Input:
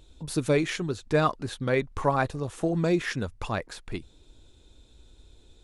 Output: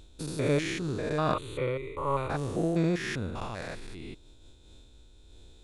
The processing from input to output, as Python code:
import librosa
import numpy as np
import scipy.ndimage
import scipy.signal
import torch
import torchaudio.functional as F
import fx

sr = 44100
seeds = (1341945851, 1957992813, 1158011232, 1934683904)

y = fx.spec_steps(x, sr, hold_ms=200)
y = fx.fixed_phaser(y, sr, hz=1100.0, stages=8, at=(1.33, 2.29), fade=0.02)
y = fx.am_noise(y, sr, seeds[0], hz=5.7, depth_pct=60)
y = F.gain(torch.from_numpy(y), 5.0).numpy()